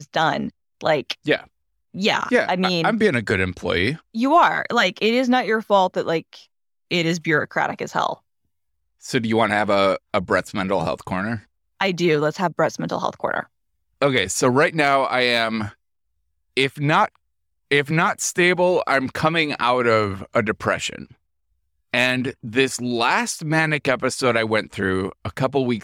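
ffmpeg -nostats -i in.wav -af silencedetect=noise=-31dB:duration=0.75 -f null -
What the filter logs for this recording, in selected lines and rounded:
silence_start: 8.14
silence_end: 9.05 | silence_duration: 0.92
silence_start: 15.69
silence_end: 16.57 | silence_duration: 0.88
silence_start: 21.03
silence_end: 21.94 | silence_duration: 0.90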